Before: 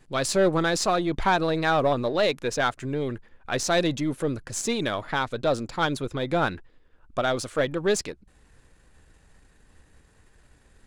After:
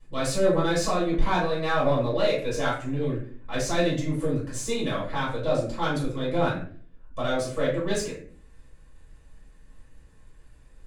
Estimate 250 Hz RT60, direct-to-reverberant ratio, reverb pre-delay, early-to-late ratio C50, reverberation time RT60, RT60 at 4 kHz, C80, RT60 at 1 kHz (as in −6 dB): 0.65 s, −9.0 dB, 3 ms, 4.5 dB, 0.45 s, 0.30 s, 9.0 dB, 0.40 s